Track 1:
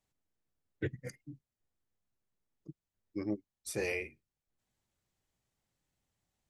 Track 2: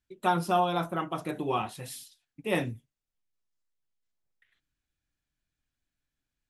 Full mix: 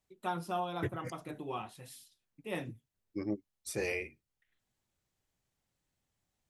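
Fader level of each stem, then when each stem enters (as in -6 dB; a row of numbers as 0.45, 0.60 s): 0.0, -10.0 dB; 0.00, 0.00 s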